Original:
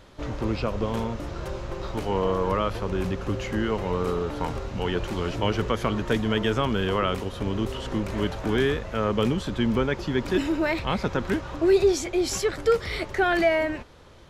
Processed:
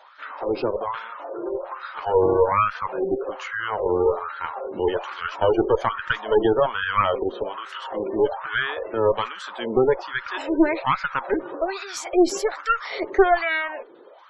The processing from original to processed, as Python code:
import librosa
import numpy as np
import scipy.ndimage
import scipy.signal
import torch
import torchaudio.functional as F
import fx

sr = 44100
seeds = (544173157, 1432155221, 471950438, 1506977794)

y = fx.filter_lfo_highpass(x, sr, shape='sine', hz=1.2, low_hz=340.0, high_hz=1500.0, q=5.1)
y = fx.tube_stage(y, sr, drive_db=11.0, bias=0.65)
y = fx.spec_gate(y, sr, threshold_db=-25, keep='strong')
y = y * 10.0 ** (2.5 / 20.0)